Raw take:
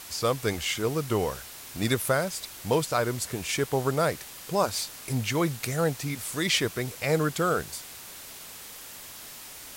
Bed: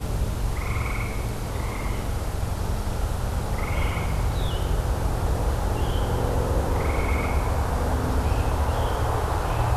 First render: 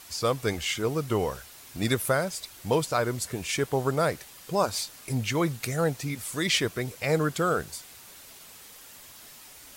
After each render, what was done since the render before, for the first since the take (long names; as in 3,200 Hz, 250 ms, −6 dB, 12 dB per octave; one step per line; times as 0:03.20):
broadband denoise 6 dB, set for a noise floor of −44 dBFS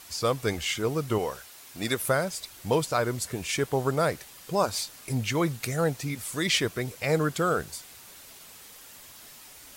0:01.18–0:02.00: low-shelf EQ 190 Hz −11 dB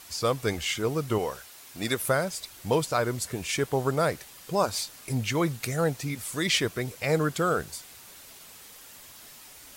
no processing that can be heard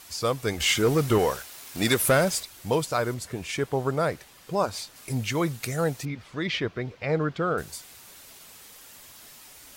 0:00.60–0:02.43: leveller curve on the samples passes 2
0:03.14–0:04.96: high-shelf EQ 4,500 Hz −7.5 dB
0:06.05–0:07.58: high-frequency loss of the air 240 metres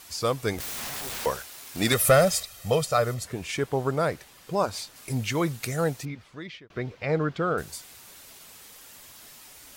0:00.58–0:01.26: wrap-around overflow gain 29.5 dB
0:01.92–0:03.24: comb filter 1.6 ms, depth 68%
0:05.87–0:06.70: fade out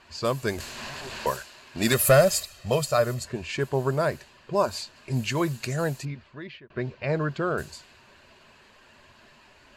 low-pass that shuts in the quiet parts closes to 2,300 Hz, open at −22.5 dBFS
EQ curve with evenly spaced ripples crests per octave 1.4, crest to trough 7 dB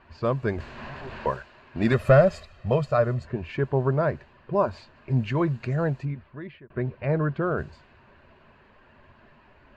low-pass filter 1,900 Hz 12 dB per octave
low-shelf EQ 190 Hz +6 dB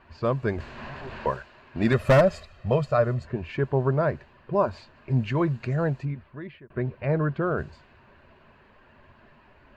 floating-point word with a short mantissa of 8 bits
wave folding −10 dBFS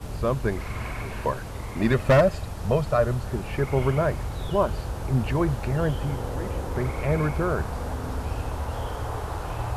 mix in bed −6.5 dB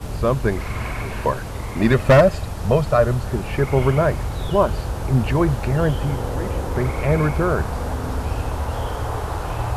level +5.5 dB